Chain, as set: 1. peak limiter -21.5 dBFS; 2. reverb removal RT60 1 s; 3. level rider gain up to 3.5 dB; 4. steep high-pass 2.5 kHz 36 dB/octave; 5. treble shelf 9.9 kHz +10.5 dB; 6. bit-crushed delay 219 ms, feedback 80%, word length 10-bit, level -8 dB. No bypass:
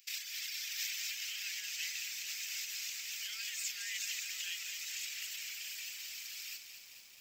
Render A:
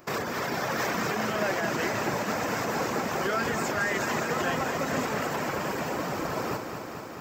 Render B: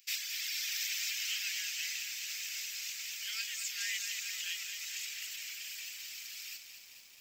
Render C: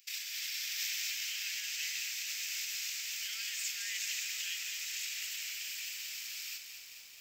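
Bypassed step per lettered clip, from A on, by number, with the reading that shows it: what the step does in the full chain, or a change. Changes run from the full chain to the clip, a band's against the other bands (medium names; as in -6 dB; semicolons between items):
4, 1 kHz band +38.0 dB; 1, mean gain reduction 1.5 dB; 2, loudness change +2.5 LU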